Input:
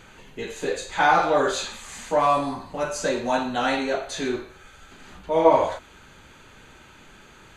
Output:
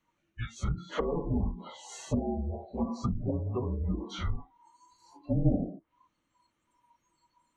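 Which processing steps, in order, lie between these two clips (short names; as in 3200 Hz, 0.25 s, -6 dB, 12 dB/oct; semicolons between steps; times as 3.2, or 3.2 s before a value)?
treble ducked by the level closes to 440 Hz, closed at -20 dBFS; spectral noise reduction 27 dB; frequency shift -350 Hz; gain -3 dB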